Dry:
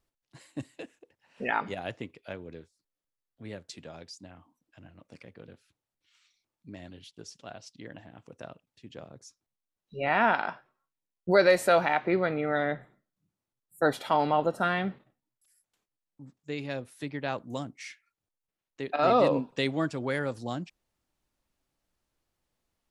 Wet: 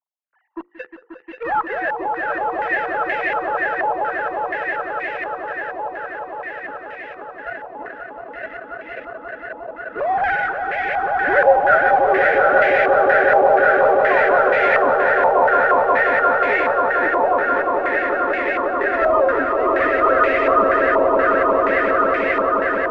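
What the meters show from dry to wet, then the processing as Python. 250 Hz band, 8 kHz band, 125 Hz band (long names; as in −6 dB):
+6.5 dB, below −10 dB, −3.0 dB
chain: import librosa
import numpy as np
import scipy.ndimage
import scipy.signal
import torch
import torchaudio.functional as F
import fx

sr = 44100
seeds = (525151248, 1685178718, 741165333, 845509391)

p1 = fx.sine_speech(x, sr)
p2 = fx.hum_notches(p1, sr, base_hz=50, count=10)
p3 = fx.fuzz(p2, sr, gain_db=38.0, gate_db=-45.0)
p4 = p2 + F.gain(torch.from_numpy(p3), -8.0).numpy()
p5 = fx.echo_swell(p4, sr, ms=178, loudest=8, wet_db=-4.0)
p6 = fx.filter_held_lowpass(p5, sr, hz=4.2, low_hz=970.0, high_hz=2100.0)
y = F.gain(torch.from_numpy(p6), -4.0).numpy()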